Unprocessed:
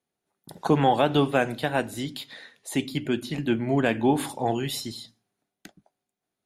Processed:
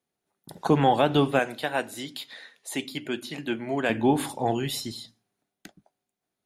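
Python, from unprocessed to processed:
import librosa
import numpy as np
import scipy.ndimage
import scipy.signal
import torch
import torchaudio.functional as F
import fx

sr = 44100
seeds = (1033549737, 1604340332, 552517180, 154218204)

y = fx.highpass(x, sr, hz=470.0, slope=6, at=(1.39, 3.9))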